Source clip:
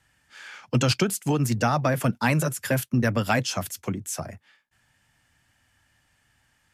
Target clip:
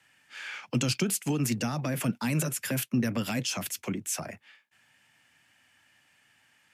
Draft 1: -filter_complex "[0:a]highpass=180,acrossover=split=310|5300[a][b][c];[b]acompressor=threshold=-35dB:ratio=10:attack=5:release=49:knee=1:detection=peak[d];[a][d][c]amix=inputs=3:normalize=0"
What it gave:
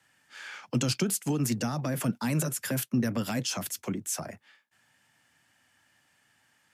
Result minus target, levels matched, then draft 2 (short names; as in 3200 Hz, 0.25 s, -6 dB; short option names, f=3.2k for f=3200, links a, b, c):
2000 Hz band -2.5 dB
-filter_complex "[0:a]highpass=180,equalizer=f=2.5k:t=o:w=0.76:g=7,acrossover=split=310|5300[a][b][c];[b]acompressor=threshold=-35dB:ratio=10:attack=5:release=49:knee=1:detection=peak[d];[a][d][c]amix=inputs=3:normalize=0"